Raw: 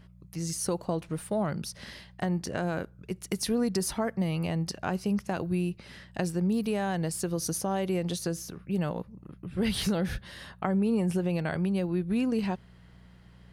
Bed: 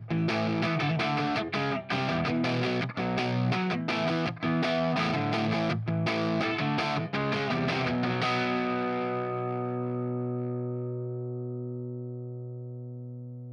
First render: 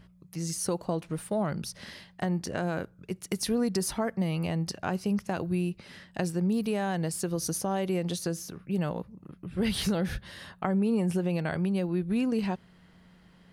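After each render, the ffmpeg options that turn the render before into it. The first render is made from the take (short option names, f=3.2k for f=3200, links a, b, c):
-af "bandreject=f=60:t=h:w=4,bandreject=f=120:t=h:w=4"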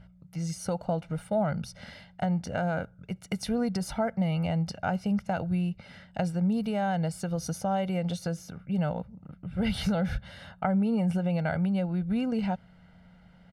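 -af "lowpass=f=2.4k:p=1,aecho=1:1:1.4:0.72"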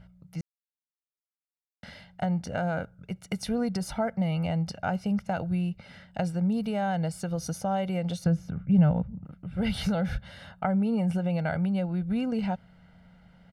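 -filter_complex "[0:a]asettb=1/sr,asplit=3[a][b][c];[a]atrim=end=8.244[d];[b]atrim=start=8.24:end=9.25,asetpts=PTS-STARTPTS,afade=t=in:d=0.004:c=qsin,afade=t=out:st=1.006:d=0.004:c=qsin,bass=f=250:g=11,treble=f=4k:g=-12[e];[c]atrim=start=9.246[f];[d][e]acrossfade=d=0.004:c1=hsin:c2=qsin[g];[g][f]acrossfade=d=0.004:c1=qsin:c2=hsin,asplit=3[h][i][j];[h]atrim=end=0.41,asetpts=PTS-STARTPTS,afade=t=out:st=0.406:d=0.004:c=hsin[k];[i]atrim=start=0.41:end=1.83,asetpts=PTS-STARTPTS,volume=0[l];[j]atrim=start=1.83,asetpts=PTS-STARTPTS,afade=t=in:d=0.004:c=hsin[m];[k][l][m]concat=n=3:v=0:a=1"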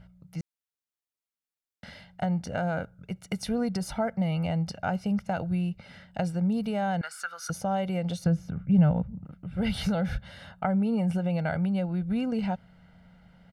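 -filter_complex "[0:a]asettb=1/sr,asplit=3[a][b][c];[a]atrim=end=7.014[d];[b]atrim=start=7.01:end=7.5,asetpts=PTS-STARTPTS,afade=t=in:d=0.004:c=qsin,afade=t=out:st=0.486:d=0.004:c=qsin,highpass=f=1.4k:t=q:w=8.5[e];[c]atrim=start=7.496[f];[d][e]acrossfade=d=0.004:c1=hsin:c2=qsin[g];[g][f]acrossfade=d=0.004:c1=qsin:c2=hsin"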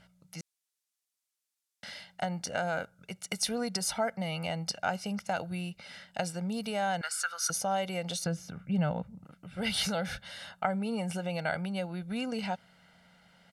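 -af "lowpass=8.2k,aemphasis=mode=production:type=riaa"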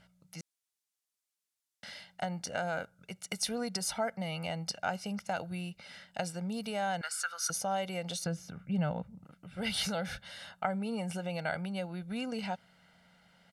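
-af "volume=-2.5dB"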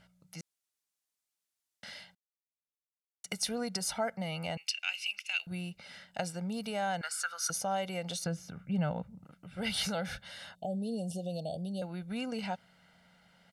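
-filter_complex "[0:a]asettb=1/sr,asplit=3[a][b][c];[a]atrim=end=4.574[d];[b]atrim=start=4.57:end=5.47,asetpts=PTS-STARTPTS,afade=t=in:d=0.004:c=qsin,afade=t=out:st=0.896:d=0.004:c=qsin,highpass=f=2.6k:t=q:w=14[e];[c]atrim=start=5.466[f];[d][e]acrossfade=d=0.004:c1=hsin:c2=qsin[g];[g][f]acrossfade=d=0.004:c1=qsin:c2=hsin,asettb=1/sr,asplit=3[h][i][j];[h]atrim=end=10.554[k];[i]atrim=start=10.55:end=11.82,asetpts=PTS-STARTPTS,afade=t=in:d=0.004:c=qsin,afade=t=out:st=1.266:d=0.004:c=qsin,asuperstop=centerf=1500:order=12:qfactor=0.61[l];[j]atrim=start=11.816[m];[k][l]acrossfade=d=0.004:c1=hsin:c2=qsin[n];[n][m]acrossfade=d=0.004:c1=qsin:c2=hsin,asplit=3[o][p][q];[o]atrim=end=2.15,asetpts=PTS-STARTPTS,afade=t=out:st=2.146:d=0.004:c=hsin[r];[p]atrim=start=2.15:end=3.24,asetpts=PTS-STARTPTS,volume=0[s];[q]atrim=start=3.24,asetpts=PTS-STARTPTS,afade=t=in:d=0.004:c=hsin[t];[r][s][t]concat=n=3:v=0:a=1"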